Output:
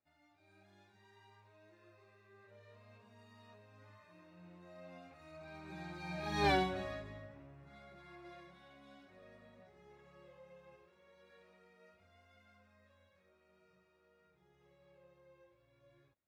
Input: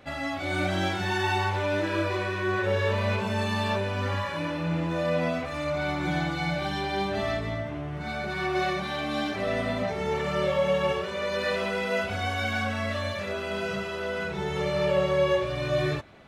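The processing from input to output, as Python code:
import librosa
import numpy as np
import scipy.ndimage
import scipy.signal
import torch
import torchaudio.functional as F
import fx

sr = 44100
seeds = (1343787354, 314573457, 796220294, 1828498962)

y = fx.doppler_pass(x, sr, speed_mps=20, closest_m=1.1, pass_at_s=6.49)
y = fx.notch(y, sr, hz=3100.0, q=9.4)
y = y * 10.0 ** (2.0 / 20.0)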